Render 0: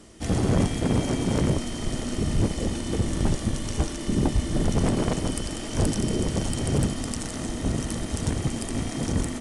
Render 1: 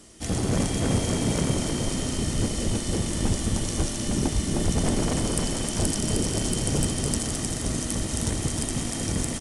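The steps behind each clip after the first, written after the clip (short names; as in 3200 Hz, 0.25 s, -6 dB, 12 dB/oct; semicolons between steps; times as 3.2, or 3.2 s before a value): high shelf 4100 Hz +9.5 dB; bouncing-ball echo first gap 0.31 s, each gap 0.7×, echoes 5; gain -3 dB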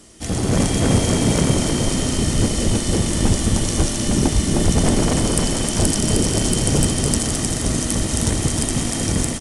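AGC gain up to 4 dB; gain +3.5 dB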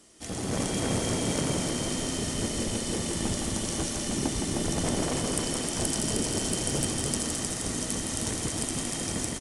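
low shelf 160 Hz -10 dB; echo 0.164 s -5.5 dB; gain -9 dB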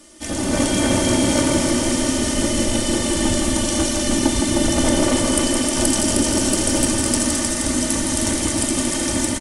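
comb 3.4 ms, depth 64%; on a send at -6 dB: reverb RT60 0.80 s, pre-delay 3 ms; on the sum: gain +8 dB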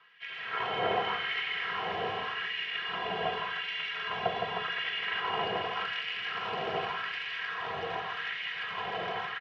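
LFO high-pass sine 0.86 Hz 810–2300 Hz; mistuned SSB -160 Hz 250–3300 Hz; gain -7.5 dB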